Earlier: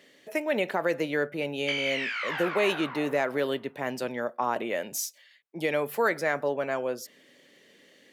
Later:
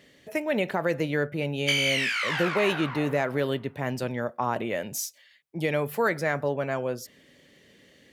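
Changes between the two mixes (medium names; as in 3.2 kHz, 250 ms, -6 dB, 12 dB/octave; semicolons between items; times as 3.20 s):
background: remove tape spacing loss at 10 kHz 21 dB; master: remove high-pass 260 Hz 12 dB/octave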